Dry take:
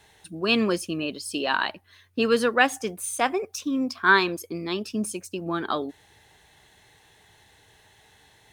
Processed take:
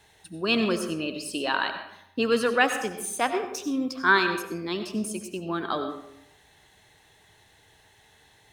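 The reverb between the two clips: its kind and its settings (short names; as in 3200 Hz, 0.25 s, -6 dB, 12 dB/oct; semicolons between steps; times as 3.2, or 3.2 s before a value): digital reverb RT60 0.78 s, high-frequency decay 0.6×, pre-delay 50 ms, DRR 7 dB; gain -2 dB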